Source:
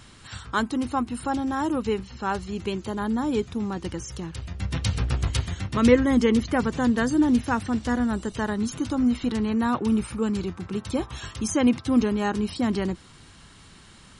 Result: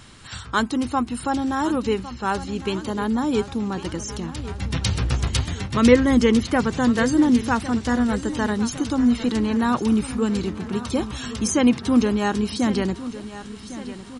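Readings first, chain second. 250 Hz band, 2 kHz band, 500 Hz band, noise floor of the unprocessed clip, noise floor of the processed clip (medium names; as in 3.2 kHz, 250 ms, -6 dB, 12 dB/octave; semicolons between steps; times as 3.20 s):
+3.5 dB, +4.0 dB, +3.5 dB, -50 dBFS, -38 dBFS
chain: hum notches 50/100 Hz; dynamic bell 5.2 kHz, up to +3 dB, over -45 dBFS, Q 0.7; on a send: feedback delay 1106 ms, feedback 55%, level -14.5 dB; on the sum: trim +3 dB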